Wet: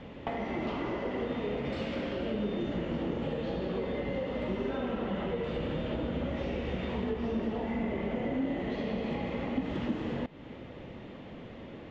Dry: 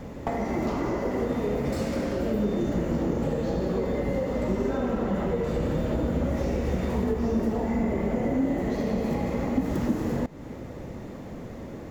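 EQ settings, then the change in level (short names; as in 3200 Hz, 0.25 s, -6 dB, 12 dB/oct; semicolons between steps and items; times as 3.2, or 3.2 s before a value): synth low-pass 3100 Hz, resonance Q 3.5; low shelf 100 Hz -5.5 dB; -6.0 dB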